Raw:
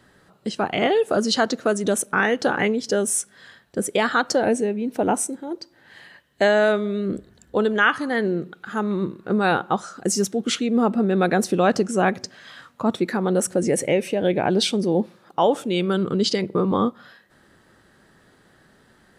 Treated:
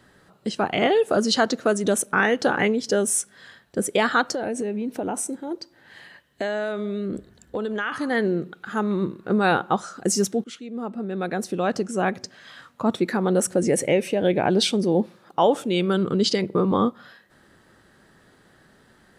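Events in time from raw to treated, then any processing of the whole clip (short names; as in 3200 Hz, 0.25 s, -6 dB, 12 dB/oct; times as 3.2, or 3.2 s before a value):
4.29–7.92 compressor, threshold -23 dBFS
10.44–13.08 fade in, from -17.5 dB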